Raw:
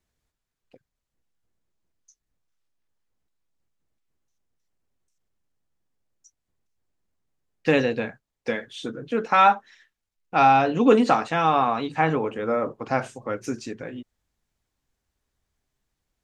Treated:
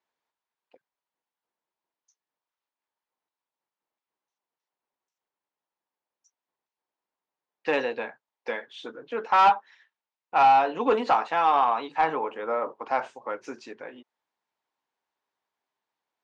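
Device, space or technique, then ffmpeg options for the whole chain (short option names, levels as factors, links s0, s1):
intercom: -af "highpass=420,lowpass=4100,equalizer=f=930:t=o:w=0.48:g=9,asoftclip=type=tanh:threshold=0.376,volume=0.708"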